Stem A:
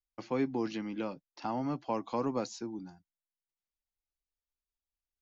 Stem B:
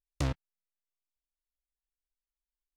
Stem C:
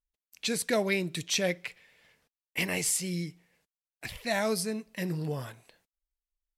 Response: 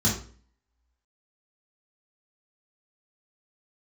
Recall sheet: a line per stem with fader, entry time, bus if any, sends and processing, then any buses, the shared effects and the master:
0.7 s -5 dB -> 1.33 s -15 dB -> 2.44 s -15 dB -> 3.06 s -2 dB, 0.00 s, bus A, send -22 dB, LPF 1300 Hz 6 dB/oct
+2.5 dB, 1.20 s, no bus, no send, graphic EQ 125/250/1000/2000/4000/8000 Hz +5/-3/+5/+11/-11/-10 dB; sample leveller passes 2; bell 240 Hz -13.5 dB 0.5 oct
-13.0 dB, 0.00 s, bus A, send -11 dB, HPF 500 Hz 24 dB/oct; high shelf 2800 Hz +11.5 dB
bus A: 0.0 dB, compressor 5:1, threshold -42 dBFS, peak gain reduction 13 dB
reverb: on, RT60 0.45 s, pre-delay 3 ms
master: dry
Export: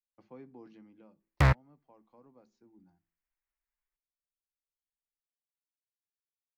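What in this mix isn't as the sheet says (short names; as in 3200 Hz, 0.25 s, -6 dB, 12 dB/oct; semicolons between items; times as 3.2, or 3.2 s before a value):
stem A -5.0 dB -> -16.0 dB; stem C: muted; reverb return -7.5 dB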